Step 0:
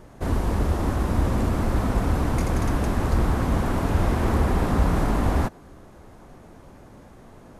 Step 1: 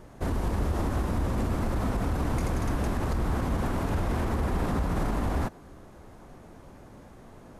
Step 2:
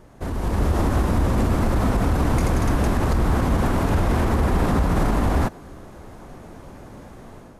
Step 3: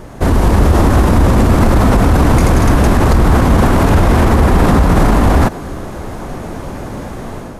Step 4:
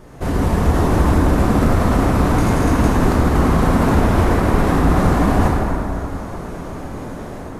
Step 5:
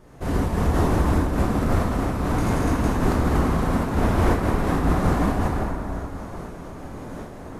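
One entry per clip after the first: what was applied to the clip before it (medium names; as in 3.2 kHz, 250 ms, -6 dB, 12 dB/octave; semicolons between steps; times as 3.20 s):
peak limiter -17.5 dBFS, peak gain reduction 9 dB; trim -2 dB
level rider gain up to 8 dB
loudness maximiser +17 dB; trim -1 dB
plate-style reverb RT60 2.8 s, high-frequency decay 0.5×, DRR -4.5 dB; trim -10.5 dB
random flutter of the level, depth 65%; trim -2.5 dB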